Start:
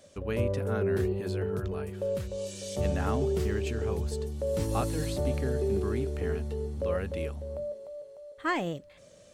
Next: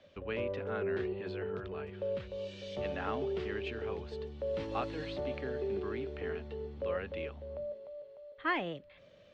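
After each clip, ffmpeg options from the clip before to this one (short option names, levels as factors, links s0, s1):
-filter_complex "[0:a]lowpass=f=3300:w=0.5412,lowpass=f=3300:w=1.3066,highshelf=f=2100:g=9,acrossover=split=250|410|1700[s0][s1][s2][s3];[s0]acompressor=threshold=0.00794:ratio=4[s4];[s4][s1][s2][s3]amix=inputs=4:normalize=0,volume=0.562"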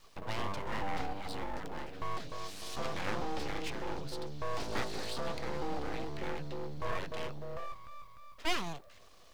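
-af "aexciter=amount=4:drive=7:freq=4300,asubboost=boost=3:cutoff=100,aeval=exprs='abs(val(0))':c=same,volume=1.33"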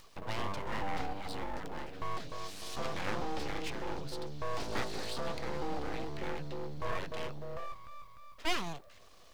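-af "acompressor=mode=upward:threshold=0.00224:ratio=2.5"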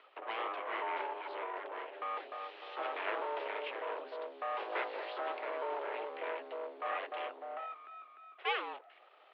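-af "highpass=f=260:t=q:w=0.5412,highpass=f=260:t=q:w=1.307,lowpass=f=3000:t=q:w=0.5176,lowpass=f=3000:t=q:w=0.7071,lowpass=f=3000:t=q:w=1.932,afreqshift=120,volume=1.12"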